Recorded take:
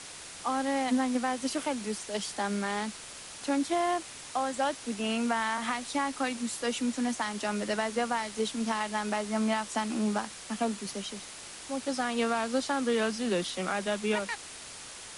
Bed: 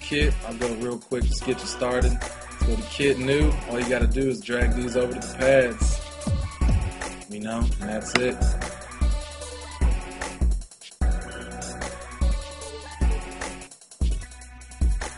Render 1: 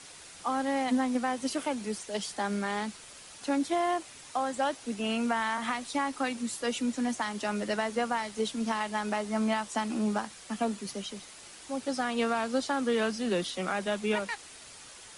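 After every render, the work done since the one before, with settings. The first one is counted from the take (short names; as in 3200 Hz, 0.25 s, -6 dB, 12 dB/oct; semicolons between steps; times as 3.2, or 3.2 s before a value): denoiser 6 dB, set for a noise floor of -45 dBFS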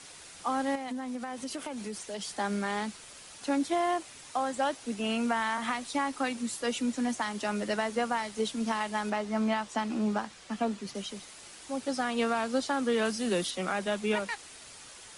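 0.75–2.38 compressor, threshold -33 dBFS; 9.1–10.95 air absorption 57 m; 13.05–13.51 high shelf 9000 Hz +12 dB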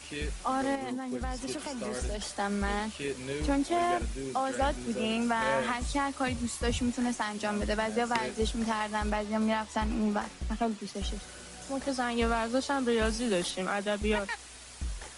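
add bed -14 dB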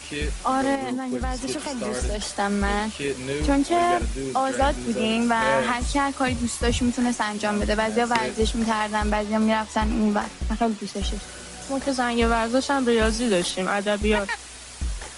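gain +7.5 dB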